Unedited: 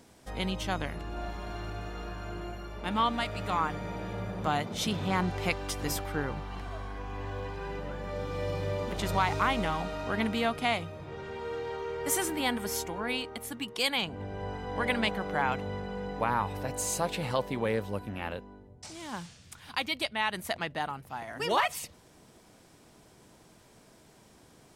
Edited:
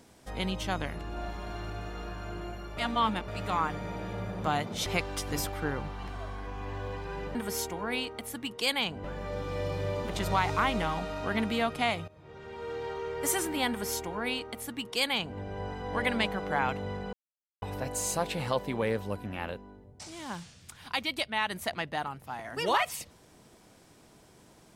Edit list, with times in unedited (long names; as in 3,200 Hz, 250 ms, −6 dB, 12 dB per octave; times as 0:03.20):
0:02.77–0:03.28: reverse
0:04.86–0:05.38: remove
0:10.91–0:11.67: fade in, from −16.5 dB
0:12.52–0:14.21: duplicate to 0:07.87
0:15.96–0:16.45: silence